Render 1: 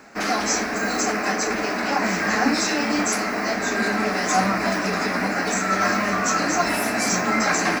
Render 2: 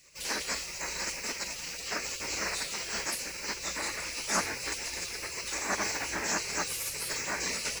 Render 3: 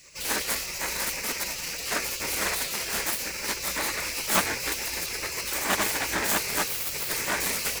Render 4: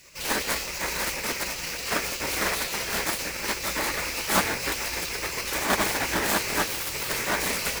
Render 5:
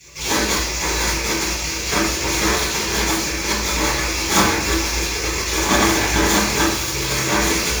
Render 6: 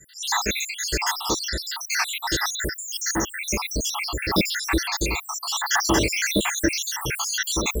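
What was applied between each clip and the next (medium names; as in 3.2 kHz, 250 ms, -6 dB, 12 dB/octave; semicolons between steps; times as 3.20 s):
graphic EQ 125/250/500/1000/2000/4000/8000 Hz -11/-5/-8/+4/-5/-6/+5 dB; spectral gate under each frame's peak -15 dB weak
self-modulated delay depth 0.2 ms; trim +7.5 dB
square wave that keeps the level; two-band feedback delay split 1 kHz, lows 159 ms, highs 455 ms, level -15.5 dB; trim -3.5 dB
reverberation RT60 0.55 s, pre-delay 3 ms, DRR -7.5 dB; trim -4 dB
random holes in the spectrogram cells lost 80%; in parallel at -11.5 dB: saturation -24 dBFS, distortion -9 dB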